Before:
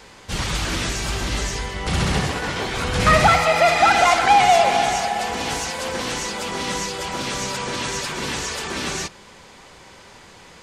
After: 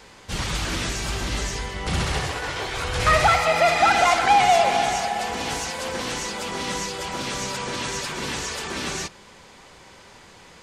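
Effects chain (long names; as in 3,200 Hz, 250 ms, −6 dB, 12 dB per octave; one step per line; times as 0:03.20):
0:02.02–0:03.45: parametric band 210 Hz −12.5 dB 0.81 octaves
level −2.5 dB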